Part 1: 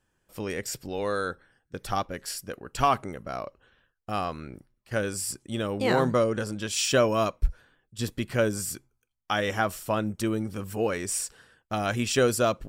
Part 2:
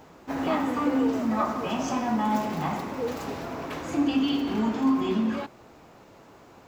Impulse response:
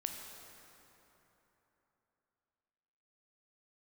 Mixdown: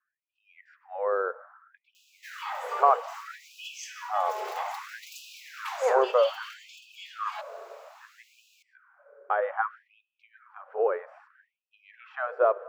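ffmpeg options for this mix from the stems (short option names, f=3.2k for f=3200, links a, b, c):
-filter_complex "[0:a]lowpass=f=1.4k:w=0.5412,lowpass=f=1.4k:w=1.3066,volume=1dB,asplit=2[a][b];[b]volume=-11.5dB[c];[1:a]bandreject=f=77.49:t=h:w=4,bandreject=f=154.98:t=h:w=4,bandreject=f=232.47:t=h:w=4,bandreject=f=309.96:t=h:w=4,bandreject=f=387.45:t=h:w=4,bandreject=f=464.94:t=h:w=4,bandreject=f=542.43:t=h:w=4,bandreject=f=619.92:t=h:w=4,bandreject=f=697.41:t=h:w=4,acompressor=threshold=-29dB:ratio=4,adelay=1950,volume=2dB[d];[2:a]atrim=start_sample=2205[e];[c][e]afir=irnorm=-1:irlink=0[f];[a][d][f]amix=inputs=3:normalize=0,afftfilt=real='re*gte(b*sr/1024,370*pow(2500/370,0.5+0.5*sin(2*PI*0.62*pts/sr)))':imag='im*gte(b*sr/1024,370*pow(2500/370,0.5+0.5*sin(2*PI*0.62*pts/sr)))':win_size=1024:overlap=0.75"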